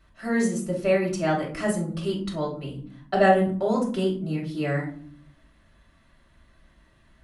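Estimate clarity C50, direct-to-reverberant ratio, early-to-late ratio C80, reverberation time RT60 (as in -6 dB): 8.0 dB, -4.0 dB, 13.0 dB, no single decay rate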